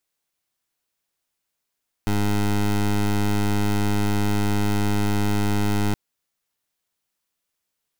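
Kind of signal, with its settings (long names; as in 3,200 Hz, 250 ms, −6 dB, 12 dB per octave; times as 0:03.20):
pulse wave 103 Hz, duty 18% −20.5 dBFS 3.87 s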